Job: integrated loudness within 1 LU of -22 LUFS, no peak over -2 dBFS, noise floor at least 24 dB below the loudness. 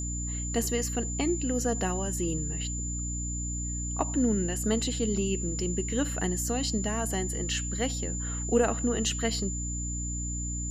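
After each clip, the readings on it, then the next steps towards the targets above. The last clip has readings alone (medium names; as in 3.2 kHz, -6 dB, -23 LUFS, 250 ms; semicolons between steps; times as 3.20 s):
hum 60 Hz; highest harmonic 300 Hz; hum level -32 dBFS; steady tone 7.1 kHz; tone level -35 dBFS; loudness -29.5 LUFS; peak level -12.0 dBFS; loudness target -22.0 LUFS
-> de-hum 60 Hz, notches 5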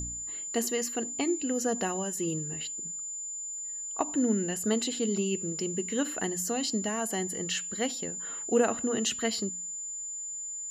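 hum not found; steady tone 7.1 kHz; tone level -35 dBFS
-> band-stop 7.1 kHz, Q 30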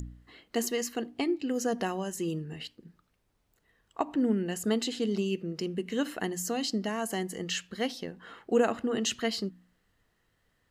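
steady tone not found; loudness -31.5 LUFS; peak level -13.0 dBFS; loudness target -22.0 LUFS
-> trim +9.5 dB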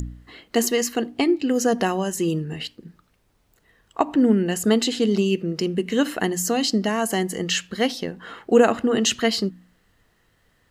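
loudness -22.0 LUFS; peak level -3.5 dBFS; noise floor -64 dBFS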